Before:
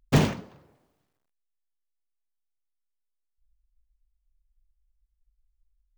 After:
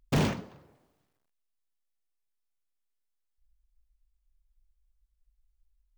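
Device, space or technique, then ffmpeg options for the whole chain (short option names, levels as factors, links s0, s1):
limiter into clipper: -af "alimiter=limit=0.178:level=0:latency=1:release=32,asoftclip=type=hard:threshold=0.0944"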